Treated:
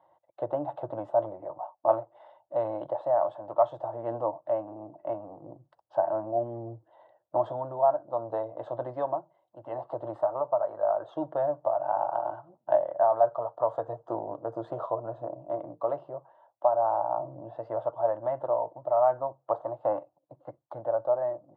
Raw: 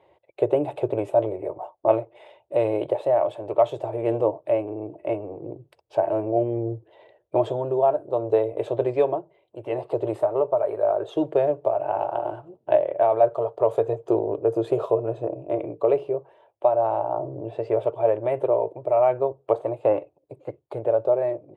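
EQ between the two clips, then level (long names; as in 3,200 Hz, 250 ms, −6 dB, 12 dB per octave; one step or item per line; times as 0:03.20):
band-pass filter 200–2,400 Hz
phaser with its sweep stopped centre 1,000 Hz, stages 4
0.0 dB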